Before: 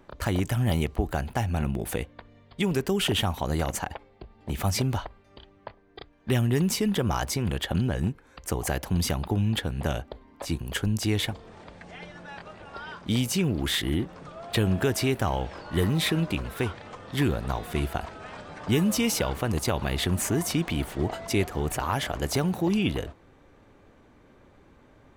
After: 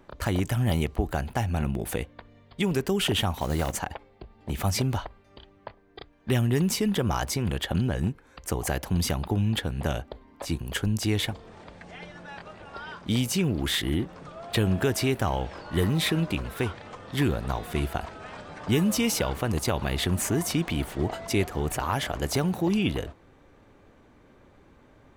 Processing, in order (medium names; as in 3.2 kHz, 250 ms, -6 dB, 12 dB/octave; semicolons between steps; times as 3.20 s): 3.34–3.79 s: block-companded coder 5-bit